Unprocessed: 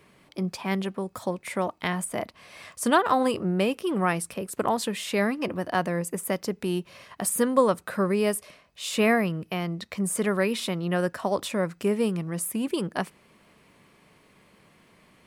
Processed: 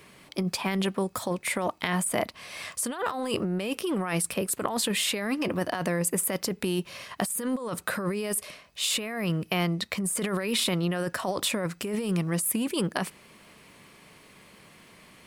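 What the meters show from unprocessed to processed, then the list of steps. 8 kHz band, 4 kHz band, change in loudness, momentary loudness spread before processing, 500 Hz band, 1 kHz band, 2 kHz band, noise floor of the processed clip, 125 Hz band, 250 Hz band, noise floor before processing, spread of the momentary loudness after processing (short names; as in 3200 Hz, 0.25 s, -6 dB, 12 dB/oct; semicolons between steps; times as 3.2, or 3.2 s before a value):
+3.5 dB, +4.5 dB, -1.5 dB, 10 LU, -4.5 dB, -5.5 dB, -1.5 dB, -55 dBFS, 0.0 dB, -2.0 dB, -59 dBFS, 5 LU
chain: high shelf 2100 Hz +6.5 dB; negative-ratio compressor -28 dBFS, ratio -1; dynamic EQ 5900 Hz, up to -4 dB, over -45 dBFS, Q 2.8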